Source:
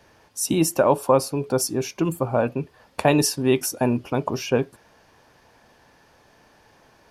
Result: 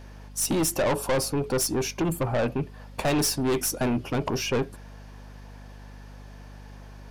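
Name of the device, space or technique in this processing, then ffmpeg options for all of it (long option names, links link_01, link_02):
valve amplifier with mains hum: -af "aeval=exprs='(tanh(15.8*val(0)+0.15)-tanh(0.15))/15.8':channel_layout=same,aeval=exprs='val(0)+0.00501*(sin(2*PI*50*n/s)+sin(2*PI*2*50*n/s)/2+sin(2*PI*3*50*n/s)/3+sin(2*PI*4*50*n/s)/4+sin(2*PI*5*50*n/s)/5)':channel_layout=same,volume=3dB"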